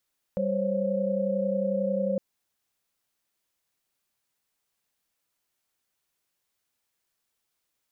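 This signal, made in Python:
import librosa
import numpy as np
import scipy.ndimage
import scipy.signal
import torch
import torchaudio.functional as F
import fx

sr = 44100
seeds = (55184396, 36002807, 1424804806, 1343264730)

y = fx.chord(sr, length_s=1.81, notes=(55, 72, 73), wave='sine', level_db=-28.5)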